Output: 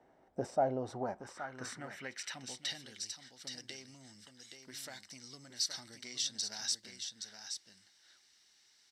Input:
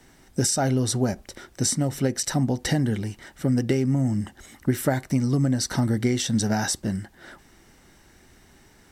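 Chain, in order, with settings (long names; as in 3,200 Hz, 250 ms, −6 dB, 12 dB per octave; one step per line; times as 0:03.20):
one-sided soft clipper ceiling −15 dBFS
low-shelf EQ 130 Hz +8 dB
single-tap delay 822 ms −7 dB
band-pass filter sweep 640 Hz → 4,600 Hz, 0:00.71–0:02.95
level −1.5 dB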